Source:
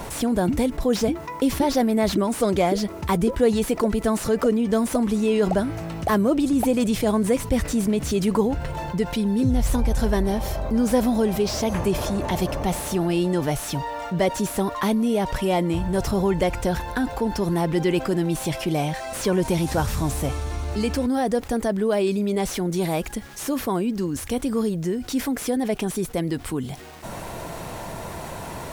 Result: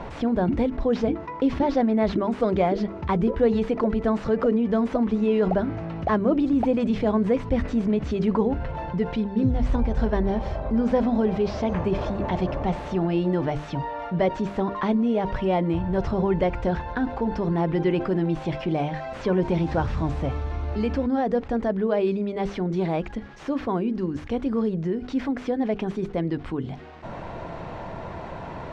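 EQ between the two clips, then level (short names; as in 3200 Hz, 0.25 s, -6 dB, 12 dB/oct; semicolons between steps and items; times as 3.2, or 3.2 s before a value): LPF 2500 Hz 6 dB/oct; air absorption 170 m; notches 50/100/150/200/250/300/350/400/450 Hz; 0.0 dB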